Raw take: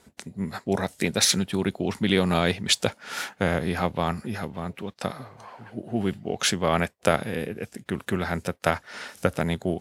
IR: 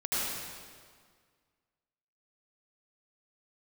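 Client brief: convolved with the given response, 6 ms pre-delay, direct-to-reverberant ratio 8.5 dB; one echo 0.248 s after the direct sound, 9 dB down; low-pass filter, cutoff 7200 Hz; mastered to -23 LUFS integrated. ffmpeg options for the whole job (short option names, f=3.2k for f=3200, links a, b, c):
-filter_complex "[0:a]lowpass=7.2k,aecho=1:1:248:0.355,asplit=2[a][b];[1:a]atrim=start_sample=2205,adelay=6[c];[b][c]afir=irnorm=-1:irlink=0,volume=-17dB[d];[a][d]amix=inputs=2:normalize=0,volume=2.5dB"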